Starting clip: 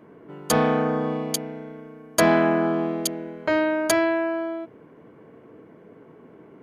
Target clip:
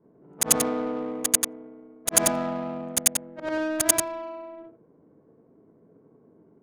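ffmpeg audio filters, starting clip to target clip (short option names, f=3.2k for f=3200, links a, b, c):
-af "afftfilt=real='re':imag='-im':win_size=8192:overlap=0.75,aexciter=amount=15.3:drive=4.5:freq=6.1k,adynamicsmooth=sensitivity=2.5:basefreq=730,volume=-3dB"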